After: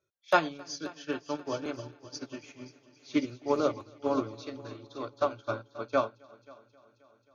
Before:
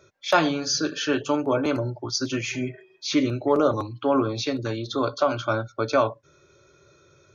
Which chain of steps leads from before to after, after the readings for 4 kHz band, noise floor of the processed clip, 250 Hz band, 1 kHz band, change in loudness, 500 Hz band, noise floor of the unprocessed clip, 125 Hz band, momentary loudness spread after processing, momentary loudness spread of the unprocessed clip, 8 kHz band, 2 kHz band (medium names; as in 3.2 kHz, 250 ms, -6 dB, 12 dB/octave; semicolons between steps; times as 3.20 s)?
-13.5 dB, -68 dBFS, -9.5 dB, -6.5 dB, -8.0 dB, -8.0 dB, -60 dBFS, -14.5 dB, 16 LU, 7 LU, no reading, -7.5 dB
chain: multi-head delay 267 ms, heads first and second, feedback 65%, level -12.5 dB; upward expansion 2.5:1, over -31 dBFS; trim -2.5 dB